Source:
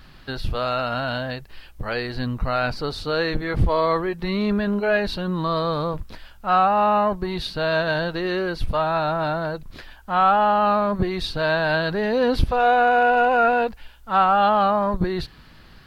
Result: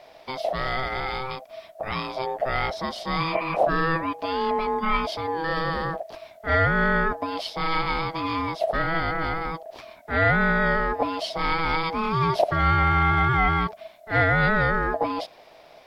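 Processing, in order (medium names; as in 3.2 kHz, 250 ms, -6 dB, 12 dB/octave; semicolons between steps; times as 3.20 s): spectral replace 3.28–3.53 s, 1.1–2.5 kHz before; ring modulator 650 Hz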